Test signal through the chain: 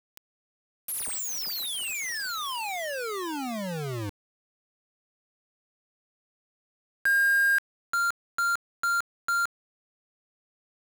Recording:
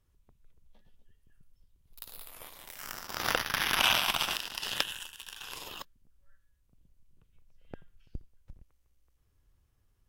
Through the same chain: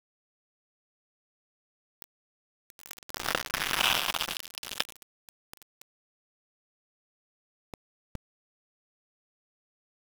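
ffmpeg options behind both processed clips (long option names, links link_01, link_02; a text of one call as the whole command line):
ffmpeg -i in.wav -af "aeval=exprs='val(0)*gte(abs(val(0)),0.0398)':channel_layout=same" out.wav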